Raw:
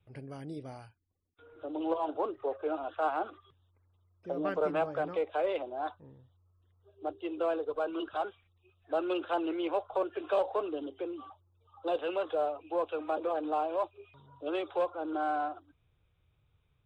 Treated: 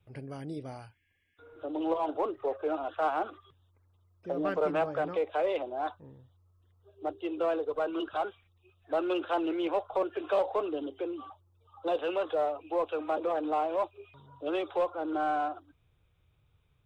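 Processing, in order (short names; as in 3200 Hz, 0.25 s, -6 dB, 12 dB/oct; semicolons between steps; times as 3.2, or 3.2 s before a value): spectral repair 0.95–1.5, 1600–3400 Hz after; in parallel at -9 dB: overloaded stage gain 31.5 dB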